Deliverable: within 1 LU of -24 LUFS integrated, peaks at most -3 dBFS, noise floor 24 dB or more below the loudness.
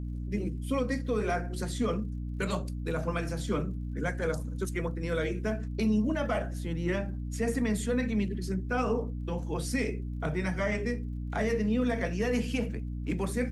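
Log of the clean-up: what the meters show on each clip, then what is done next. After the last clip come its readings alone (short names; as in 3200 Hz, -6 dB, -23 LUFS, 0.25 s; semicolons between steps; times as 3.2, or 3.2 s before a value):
ticks 35/s; hum 60 Hz; harmonics up to 300 Hz; hum level -33 dBFS; loudness -31.5 LUFS; peak -17.5 dBFS; loudness target -24.0 LUFS
-> de-click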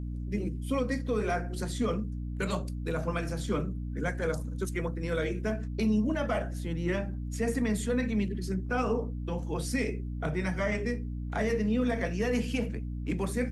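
ticks 0/s; hum 60 Hz; harmonics up to 300 Hz; hum level -33 dBFS
-> de-hum 60 Hz, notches 5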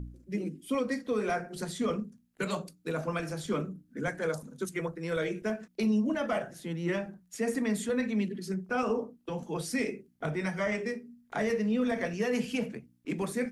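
hum none; loudness -33.0 LUFS; peak -19.0 dBFS; loudness target -24.0 LUFS
-> gain +9 dB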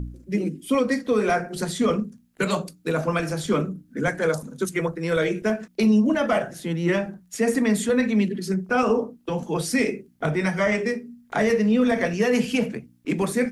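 loudness -24.0 LUFS; peak -10.0 dBFS; noise floor -58 dBFS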